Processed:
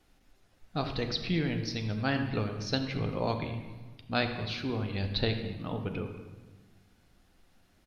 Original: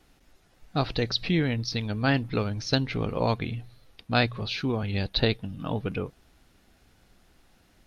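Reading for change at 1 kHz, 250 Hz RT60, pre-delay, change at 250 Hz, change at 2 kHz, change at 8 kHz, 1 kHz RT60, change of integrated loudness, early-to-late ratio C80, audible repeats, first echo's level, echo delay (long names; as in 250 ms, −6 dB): −5.0 dB, 1.7 s, 10 ms, −4.5 dB, −5.0 dB, can't be measured, 1.2 s, −5.0 dB, 8.0 dB, 1, −19.5 dB, 223 ms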